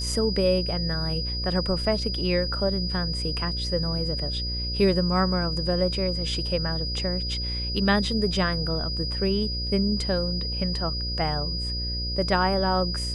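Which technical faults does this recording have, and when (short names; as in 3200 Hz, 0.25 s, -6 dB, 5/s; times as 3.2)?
buzz 60 Hz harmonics 10 -31 dBFS
tone 4900 Hz -30 dBFS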